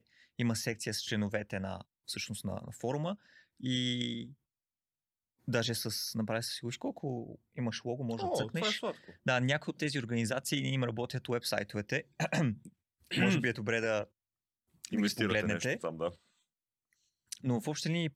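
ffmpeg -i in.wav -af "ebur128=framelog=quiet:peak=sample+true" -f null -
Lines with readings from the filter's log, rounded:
Integrated loudness:
  I:         -34.6 LUFS
  Threshold: -45.0 LUFS
Loudness range:
  LRA:         4.0 LU
  Threshold: -55.3 LUFS
  LRA low:   -37.6 LUFS
  LRA high:  -33.6 LUFS
Sample peak:
  Peak:      -14.4 dBFS
True peak:
  Peak:      -14.4 dBFS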